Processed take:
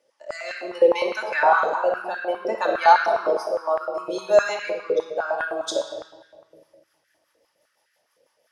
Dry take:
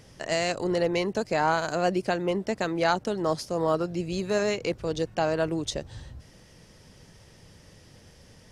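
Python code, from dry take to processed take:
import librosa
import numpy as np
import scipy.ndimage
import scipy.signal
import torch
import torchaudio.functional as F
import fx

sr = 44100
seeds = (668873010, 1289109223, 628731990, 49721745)

y = fx.rotary_switch(x, sr, hz=0.65, then_hz=6.0, switch_at_s=6.24)
y = fx.noise_reduce_blind(y, sr, reduce_db=16)
y = fx.room_shoebox(y, sr, seeds[0], volume_m3=2300.0, walls='mixed', distance_m=2.5)
y = fx.filter_held_highpass(y, sr, hz=9.8, low_hz=500.0, high_hz=1600.0)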